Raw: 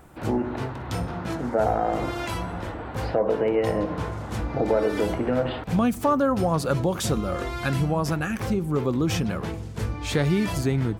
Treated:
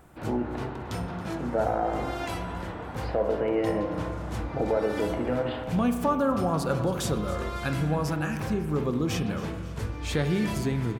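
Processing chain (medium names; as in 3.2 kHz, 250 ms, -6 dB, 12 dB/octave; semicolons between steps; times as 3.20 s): on a send: feedback delay 275 ms, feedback 47%, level -16 dB; on the sum: spring tank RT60 1.6 s, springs 33 ms, chirp 35 ms, DRR 7 dB; trim -4 dB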